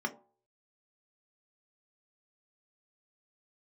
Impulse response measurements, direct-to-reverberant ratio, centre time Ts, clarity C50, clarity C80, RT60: 3.0 dB, 7 ms, 16.0 dB, 20.0 dB, 0.45 s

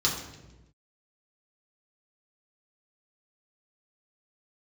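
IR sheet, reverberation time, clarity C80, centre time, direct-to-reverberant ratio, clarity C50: 1.1 s, 7.0 dB, 38 ms, −5.5 dB, 5.0 dB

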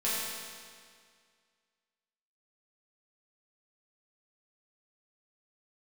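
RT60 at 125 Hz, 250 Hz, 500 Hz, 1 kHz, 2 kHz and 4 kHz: 2.0, 2.0, 2.0, 2.0, 2.0, 1.9 seconds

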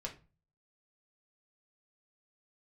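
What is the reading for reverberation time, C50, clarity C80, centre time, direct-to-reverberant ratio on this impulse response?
0.30 s, 12.5 dB, 18.5 dB, 12 ms, −1.0 dB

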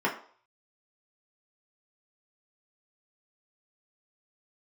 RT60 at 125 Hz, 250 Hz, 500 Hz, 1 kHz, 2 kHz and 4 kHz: 0.25, 0.40, 0.50, 0.50, 0.40, 0.45 seconds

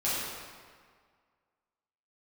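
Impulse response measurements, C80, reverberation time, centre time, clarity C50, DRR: 0.0 dB, 1.8 s, 123 ms, −2.5 dB, −10.5 dB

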